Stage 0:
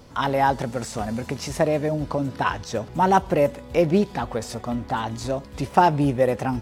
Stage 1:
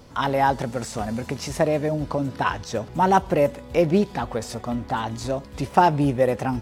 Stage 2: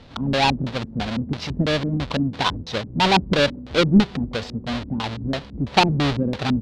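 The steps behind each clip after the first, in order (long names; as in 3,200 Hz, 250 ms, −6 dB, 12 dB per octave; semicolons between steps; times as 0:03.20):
no processing that can be heard
each half-wave held at its own peak; auto-filter low-pass square 3 Hz 250–3,900 Hz; level −3.5 dB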